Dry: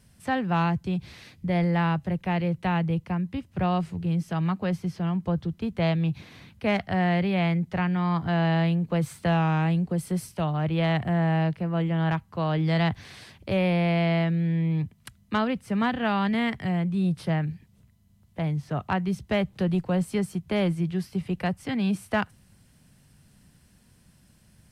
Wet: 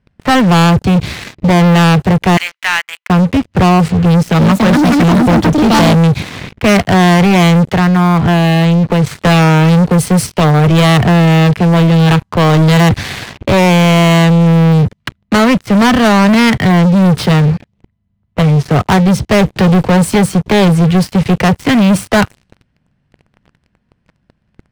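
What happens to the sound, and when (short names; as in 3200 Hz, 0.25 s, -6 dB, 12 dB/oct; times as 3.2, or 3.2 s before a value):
2.37–3.1 HPF 1300 Hz 24 dB/oct
4.03–6.14 echoes that change speed 0.358 s, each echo +5 st, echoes 2
7.69–9.11 compressor 4:1, threshold -29 dBFS
whole clip: low-pass opened by the level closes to 2200 Hz, open at -21.5 dBFS; sample leveller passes 5; gain +7 dB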